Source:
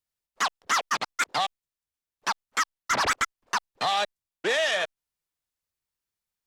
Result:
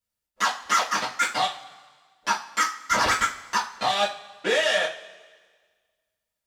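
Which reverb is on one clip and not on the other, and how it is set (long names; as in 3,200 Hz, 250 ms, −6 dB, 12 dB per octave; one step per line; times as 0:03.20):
coupled-rooms reverb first 0.31 s, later 1.6 s, from −20 dB, DRR −6 dB
level −4 dB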